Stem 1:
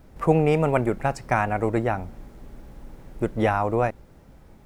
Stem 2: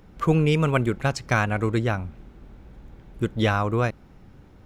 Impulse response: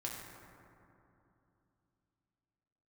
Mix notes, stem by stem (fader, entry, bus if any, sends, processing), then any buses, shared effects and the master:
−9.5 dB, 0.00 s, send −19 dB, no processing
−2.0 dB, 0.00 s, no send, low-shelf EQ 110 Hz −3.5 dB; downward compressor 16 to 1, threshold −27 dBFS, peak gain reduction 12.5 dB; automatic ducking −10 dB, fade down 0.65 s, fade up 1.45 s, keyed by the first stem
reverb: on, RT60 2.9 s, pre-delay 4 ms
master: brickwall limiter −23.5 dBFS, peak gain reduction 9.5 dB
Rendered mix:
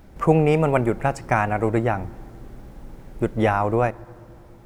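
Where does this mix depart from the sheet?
stem 1 −9.5 dB → +1.0 dB
master: missing brickwall limiter −23.5 dBFS, peak gain reduction 9.5 dB

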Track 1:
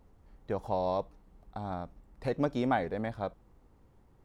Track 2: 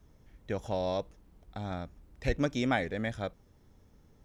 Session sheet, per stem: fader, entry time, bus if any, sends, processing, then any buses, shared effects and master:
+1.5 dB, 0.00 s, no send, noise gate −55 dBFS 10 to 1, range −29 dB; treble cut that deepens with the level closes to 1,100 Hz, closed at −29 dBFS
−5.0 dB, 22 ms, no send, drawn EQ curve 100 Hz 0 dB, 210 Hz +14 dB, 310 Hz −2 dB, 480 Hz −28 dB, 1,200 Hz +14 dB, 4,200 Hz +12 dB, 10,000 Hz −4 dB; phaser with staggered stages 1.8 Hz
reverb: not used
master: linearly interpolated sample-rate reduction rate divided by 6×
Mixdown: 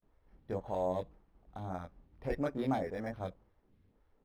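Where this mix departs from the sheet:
stem 1 +1.5 dB → −5.5 dB
stem 2: missing drawn EQ curve 100 Hz 0 dB, 210 Hz +14 dB, 310 Hz −2 dB, 480 Hz −28 dB, 1,200 Hz +14 dB, 4,200 Hz +12 dB, 10,000 Hz −4 dB

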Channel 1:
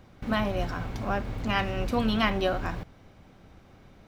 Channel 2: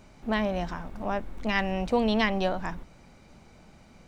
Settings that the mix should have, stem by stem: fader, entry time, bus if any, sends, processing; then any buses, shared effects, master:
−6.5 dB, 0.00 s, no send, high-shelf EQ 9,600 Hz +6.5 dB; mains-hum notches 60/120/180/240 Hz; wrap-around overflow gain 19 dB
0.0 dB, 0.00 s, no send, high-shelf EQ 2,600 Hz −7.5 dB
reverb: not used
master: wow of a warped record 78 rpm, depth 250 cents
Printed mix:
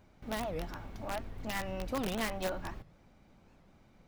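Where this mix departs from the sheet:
stem 1 −6.5 dB → −13.0 dB
stem 2 0.0 dB → −10.0 dB

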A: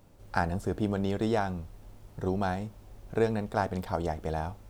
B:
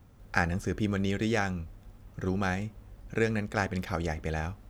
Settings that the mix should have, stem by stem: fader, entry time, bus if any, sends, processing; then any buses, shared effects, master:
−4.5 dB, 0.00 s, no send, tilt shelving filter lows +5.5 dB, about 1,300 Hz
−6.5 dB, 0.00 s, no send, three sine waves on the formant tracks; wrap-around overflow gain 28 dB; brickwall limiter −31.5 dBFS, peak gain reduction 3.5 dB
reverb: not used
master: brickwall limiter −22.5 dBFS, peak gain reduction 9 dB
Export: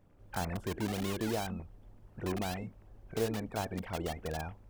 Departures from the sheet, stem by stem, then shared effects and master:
stem A −4.5 dB → −11.0 dB
master: missing brickwall limiter −22.5 dBFS, peak gain reduction 9 dB

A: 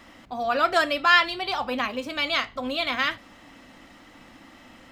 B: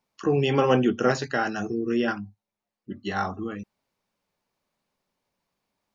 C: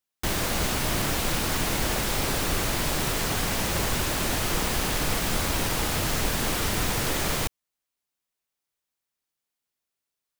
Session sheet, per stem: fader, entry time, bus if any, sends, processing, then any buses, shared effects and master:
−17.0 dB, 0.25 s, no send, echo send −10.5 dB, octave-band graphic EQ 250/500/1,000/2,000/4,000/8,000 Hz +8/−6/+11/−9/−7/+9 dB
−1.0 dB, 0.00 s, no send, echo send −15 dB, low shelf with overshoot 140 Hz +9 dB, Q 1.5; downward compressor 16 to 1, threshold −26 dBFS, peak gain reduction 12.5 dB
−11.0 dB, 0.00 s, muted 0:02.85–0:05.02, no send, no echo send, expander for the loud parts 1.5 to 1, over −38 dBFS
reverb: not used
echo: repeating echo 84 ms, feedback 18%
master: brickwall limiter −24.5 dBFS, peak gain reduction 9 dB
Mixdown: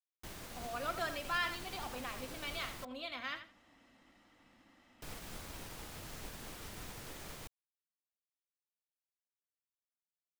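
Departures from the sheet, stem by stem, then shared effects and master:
stem A: missing octave-band graphic EQ 250/500/1,000/2,000/4,000/8,000 Hz +8/−6/+11/−9/−7/+9 dB
stem B: muted
stem C −11.0 dB → −20.0 dB

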